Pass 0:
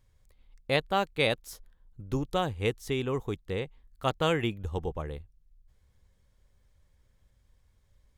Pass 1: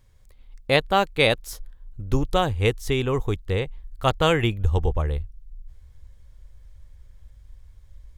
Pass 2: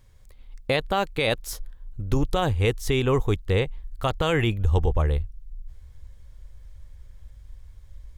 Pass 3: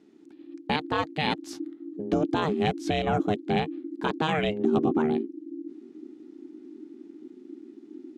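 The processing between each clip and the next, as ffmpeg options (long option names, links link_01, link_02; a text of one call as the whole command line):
ffmpeg -i in.wav -af "asubboost=boost=4.5:cutoff=89,volume=7.5dB" out.wav
ffmpeg -i in.wav -af "alimiter=limit=-15dB:level=0:latency=1:release=42,volume=2.5dB" out.wav
ffmpeg -i in.wav -af "aeval=exprs='val(0)*sin(2*PI*310*n/s)':channel_layout=same,highpass=110,lowpass=5600" out.wav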